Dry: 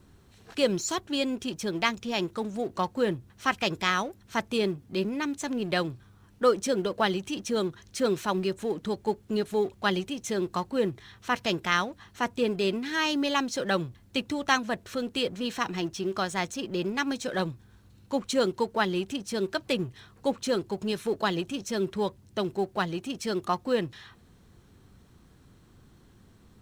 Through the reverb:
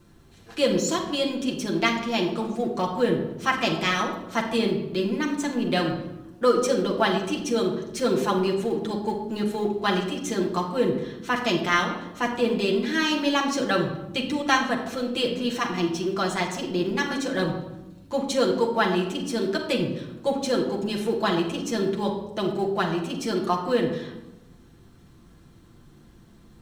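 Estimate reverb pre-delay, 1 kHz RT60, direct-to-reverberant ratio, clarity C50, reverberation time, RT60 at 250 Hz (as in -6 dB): 6 ms, 0.90 s, -1.0 dB, 7.0 dB, 1.0 s, 1.5 s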